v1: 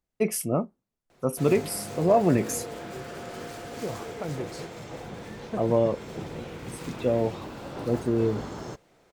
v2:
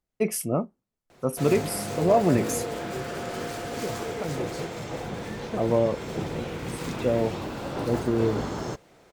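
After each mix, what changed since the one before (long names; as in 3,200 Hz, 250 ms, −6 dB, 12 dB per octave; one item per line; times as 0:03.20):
background +5.5 dB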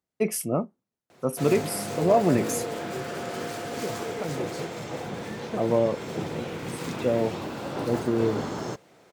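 master: add high-pass filter 110 Hz 12 dB per octave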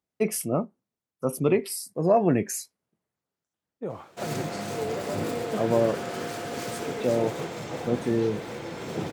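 background: entry +2.80 s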